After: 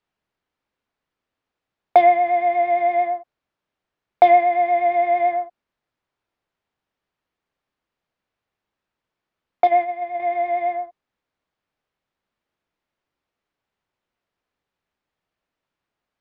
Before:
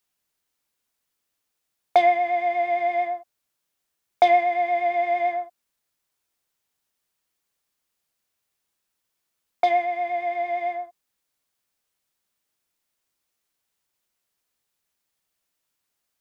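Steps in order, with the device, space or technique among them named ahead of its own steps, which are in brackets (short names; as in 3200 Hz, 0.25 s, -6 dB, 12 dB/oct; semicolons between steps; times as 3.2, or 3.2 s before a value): phone in a pocket (LPF 3800 Hz 12 dB/oct; high shelf 2300 Hz -10.5 dB); 9.67–10.2 gate -25 dBFS, range -7 dB; gain +5.5 dB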